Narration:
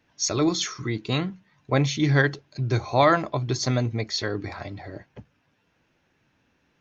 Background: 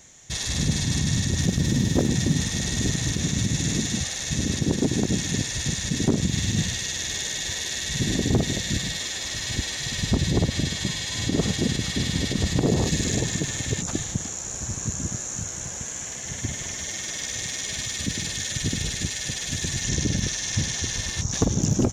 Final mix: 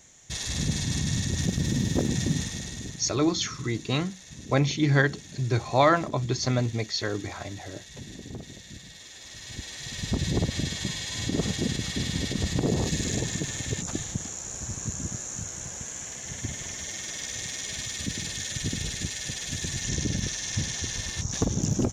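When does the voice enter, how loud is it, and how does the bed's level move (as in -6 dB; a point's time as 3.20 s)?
2.80 s, -1.5 dB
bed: 2.34 s -4 dB
3.13 s -18 dB
8.85 s -18 dB
10.28 s -4 dB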